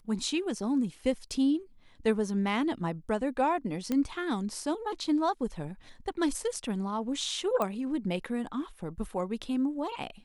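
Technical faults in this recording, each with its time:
3.92 s: pop -17 dBFS
7.62 s: pop -17 dBFS

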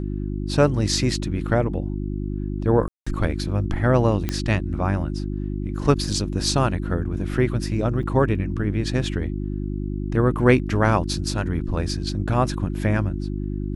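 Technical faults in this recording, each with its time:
hum 50 Hz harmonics 7 -27 dBFS
2.88–3.06 s: dropout 185 ms
4.29 s: pop -10 dBFS
8.03 s: dropout 3.4 ms

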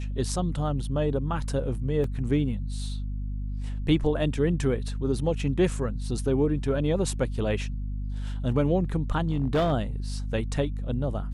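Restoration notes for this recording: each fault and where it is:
hum 50 Hz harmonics 5 -31 dBFS
2.04 s: dropout 2.4 ms
9.22–9.73 s: clipped -19 dBFS

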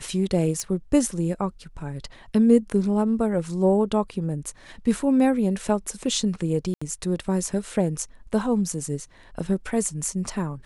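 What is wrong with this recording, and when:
0.60 s: pop -15 dBFS
6.74–6.82 s: dropout 75 ms

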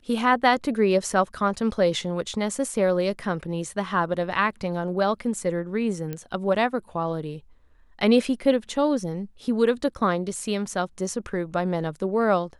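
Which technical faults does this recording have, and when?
6.13 s: pop -18 dBFS

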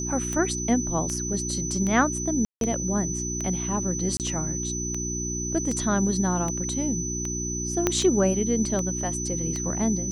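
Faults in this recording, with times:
hum 60 Hz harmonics 6 -32 dBFS
tick 78 rpm -17 dBFS
whine 6 kHz -30 dBFS
2.45–2.61 s: dropout 162 ms
4.17–4.20 s: dropout 28 ms
7.87 s: pop -7 dBFS

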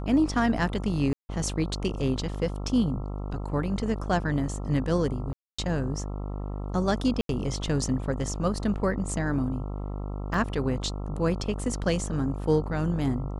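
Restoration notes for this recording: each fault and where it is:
buzz 50 Hz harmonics 27 -33 dBFS
1.13–1.29 s: dropout 160 ms
5.33–5.58 s: dropout 255 ms
7.21–7.29 s: dropout 82 ms
10.34 s: dropout 2.6 ms

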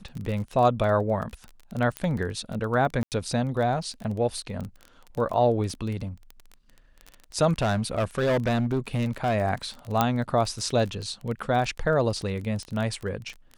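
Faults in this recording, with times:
crackle 20 per s -30 dBFS
1.97 s: pop -15 dBFS
3.03–3.12 s: dropout 88 ms
7.62–9.36 s: clipped -20 dBFS
10.01 s: pop -7 dBFS

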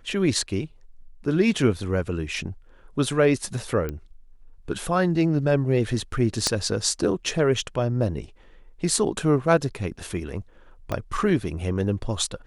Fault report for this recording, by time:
3.89 s: pop -17 dBFS
6.47 s: pop -7 dBFS
10.92 s: pop -14 dBFS

